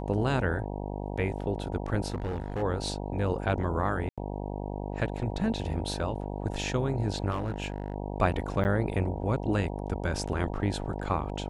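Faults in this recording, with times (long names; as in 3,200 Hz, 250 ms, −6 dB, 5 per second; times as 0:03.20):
mains buzz 50 Hz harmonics 19 −35 dBFS
0:02.10–0:02.63: clipping −28 dBFS
0:04.09–0:04.18: drop-out 86 ms
0:07.30–0:07.94: clipping −26.5 dBFS
0:08.64–0:08.65: drop-out 9.8 ms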